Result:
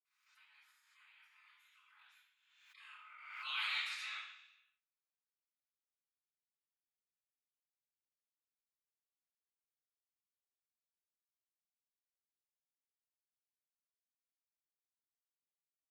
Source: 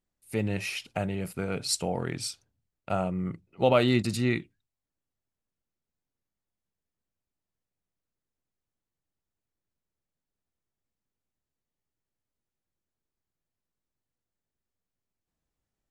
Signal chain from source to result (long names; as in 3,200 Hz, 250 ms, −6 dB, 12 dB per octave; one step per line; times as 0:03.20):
source passing by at 0:03.71, 22 m/s, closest 6.5 metres
gate on every frequency bin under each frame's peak −25 dB weak
Butterworth high-pass 990 Hz 36 dB per octave
convolution reverb RT60 0.80 s, pre-delay 46 ms
background raised ahead of every attack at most 50 dB per second
level +4.5 dB